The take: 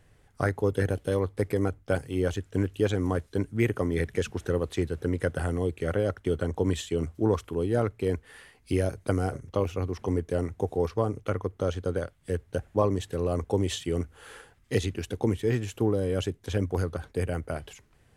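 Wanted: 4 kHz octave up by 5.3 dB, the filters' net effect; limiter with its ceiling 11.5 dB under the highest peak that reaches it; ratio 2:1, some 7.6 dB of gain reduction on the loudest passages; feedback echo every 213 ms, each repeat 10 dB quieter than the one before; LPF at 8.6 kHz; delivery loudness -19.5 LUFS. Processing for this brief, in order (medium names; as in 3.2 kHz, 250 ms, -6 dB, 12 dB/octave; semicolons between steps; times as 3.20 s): low-pass 8.6 kHz; peaking EQ 4 kHz +7 dB; compression 2:1, threshold -34 dBFS; peak limiter -27.5 dBFS; feedback delay 213 ms, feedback 32%, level -10 dB; trim +19.5 dB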